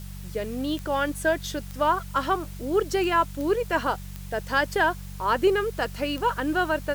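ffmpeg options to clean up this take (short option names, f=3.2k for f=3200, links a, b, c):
-af "adeclick=t=4,bandreject=f=47.5:t=h:w=4,bandreject=f=95:t=h:w=4,bandreject=f=142.5:t=h:w=4,bandreject=f=190:t=h:w=4,afwtdn=0.0035"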